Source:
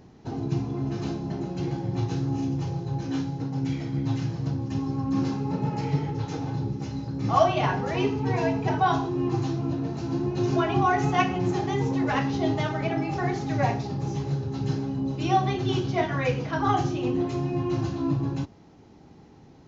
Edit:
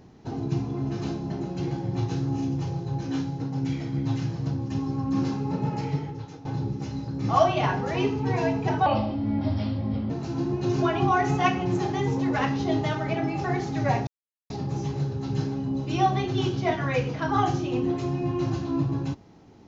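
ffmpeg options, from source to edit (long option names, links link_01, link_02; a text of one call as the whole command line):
ffmpeg -i in.wav -filter_complex "[0:a]asplit=5[link_01][link_02][link_03][link_04][link_05];[link_01]atrim=end=6.45,asetpts=PTS-STARTPTS,afade=type=out:start_time=5.74:duration=0.71:silence=0.158489[link_06];[link_02]atrim=start=6.45:end=8.864,asetpts=PTS-STARTPTS,afade=type=in:duration=0.004:curve=hsin:silence=0.158489[link_07];[link_03]atrim=start=8.86:end=9.84,asetpts=PTS-STARTPTS,asetrate=34839,aresample=44100,atrim=end_sample=54706,asetpts=PTS-STARTPTS[link_08];[link_04]atrim=start=9.836:end=13.81,asetpts=PTS-STARTPTS,afade=type=out:start_time=3.97:duration=0.004:curve=hsin,apad=pad_dur=0.43[link_09];[link_05]atrim=start=13.81,asetpts=PTS-STARTPTS,afade=type=in:duration=0.004:curve=hsin[link_10];[link_06][link_07]concat=n=2:v=0:a=1[link_11];[link_11][link_08]acrossfade=duration=0.004:curve1=hsin:curve2=hsin[link_12];[link_09][link_10]concat=n=2:v=0:a=1[link_13];[link_12][link_13]acrossfade=duration=0.004:curve1=hsin:curve2=hsin" out.wav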